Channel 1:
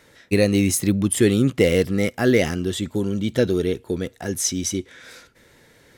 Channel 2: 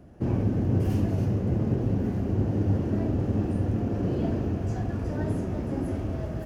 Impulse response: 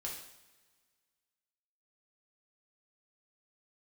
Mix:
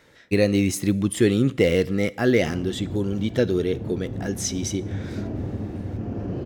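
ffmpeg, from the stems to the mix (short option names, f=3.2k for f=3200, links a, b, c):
-filter_complex "[0:a]volume=-2.5dB,asplit=3[a][b][c];[b]volume=-15.5dB[d];[1:a]alimiter=limit=-18.5dB:level=0:latency=1:release=385,adelay=2250,volume=-1.5dB[e];[c]apad=whole_len=383887[f];[e][f]sidechaincompress=threshold=-27dB:ratio=8:attack=16:release=229[g];[2:a]atrim=start_sample=2205[h];[d][h]afir=irnorm=-1:irlink=0[i];[a][g][i]amix=inputs=3:normalize=0,equalizer=f=11k:w=0.75:g=-8"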